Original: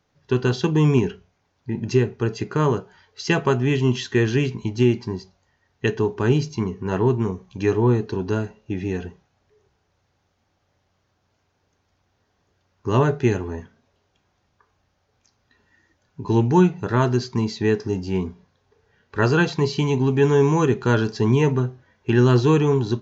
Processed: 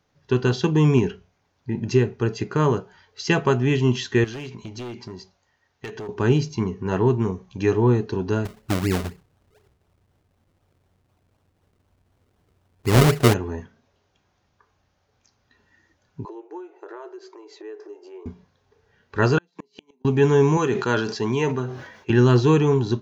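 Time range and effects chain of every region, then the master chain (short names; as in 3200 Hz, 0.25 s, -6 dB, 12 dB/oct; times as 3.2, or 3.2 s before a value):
4.24–6.09 hard clip -17.5 dBFS + low shelf 360 Hz -7 dB + compressor 5:1, threshold -31 dBFS
8.45–13.34 tilt -1.5 dB/oct + decimation with a swept rate 36× 4 Hz
16.25–18.26 bell 4800 Hz -14 dB 2.3 oct + compressor 10:1, threshold -30 dBFS + brick-wall FIR high-pass 310 Hz
19.38–20.05 steep high-pass 170 Hz 96 dB/oct + flipped gate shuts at -16 dBFS, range -42 dB
20.57–22.1 HPF 190 Hz 6 dB/oct + low shelf 400 Hz -4.5 dB + sustainer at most 66 dB/s
whole clip: dry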